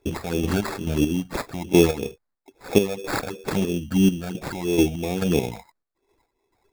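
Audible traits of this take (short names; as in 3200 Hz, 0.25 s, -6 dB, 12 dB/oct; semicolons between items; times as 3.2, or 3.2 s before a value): phasing stages 12, 3 Hz, lowest notch 330–2700 Hz; aliases and images of a low sample rate 3000 Hz, jitter 0%; chopped level 2.3 Hz, depth 60%, duty 40%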